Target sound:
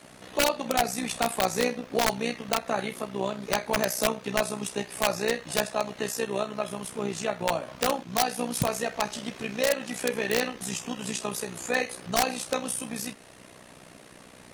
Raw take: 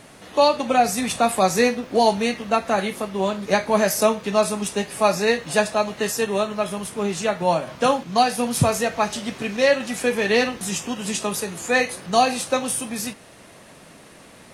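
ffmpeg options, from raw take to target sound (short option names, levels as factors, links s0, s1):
-filter_complex "[0:a]adynamicequalizer=threshold=0.00891:dfrequency=100:dqfactor=1.1:tfrequency=100:tqfactor=1.1:attack=5:release=100:ratio=0.375:range=3:mode=cutabove:tftype=bell,asplit=2[s0][s1];[s1]acompressor=threshold=0.0282:ratio=5,volume=0.841[s2];[s0][s2]amix=inputs=2:normalize=0,aeval=exprs='(mod(2.24*val(0)+1,2)-1)/2.24':c=same,tremolo=f=62:d=0.75,volume=0.531"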